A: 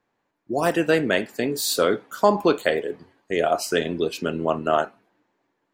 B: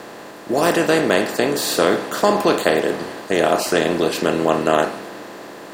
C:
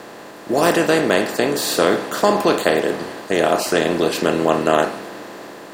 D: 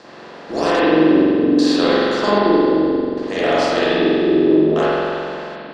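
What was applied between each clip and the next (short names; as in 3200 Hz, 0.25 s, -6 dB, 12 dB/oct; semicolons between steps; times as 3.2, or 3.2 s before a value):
per-bin compression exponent 0.4; gain -1 dB
AGC; gain -1 dB
added harmonics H 6 -24 dB, 8 -36 dB, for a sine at -1.5 dBFS; LFO low-pass square 0.63 Hz 330–5000 Hz; spring tank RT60 2.4 s, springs 44 ms, chirp 60 ms, DRR -9 dB; gain -8.5 dB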